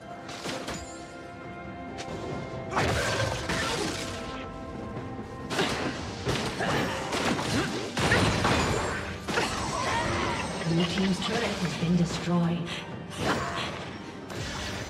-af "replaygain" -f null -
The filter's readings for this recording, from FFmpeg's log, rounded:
track_gain = +9.7 dB
track_peak = 0.208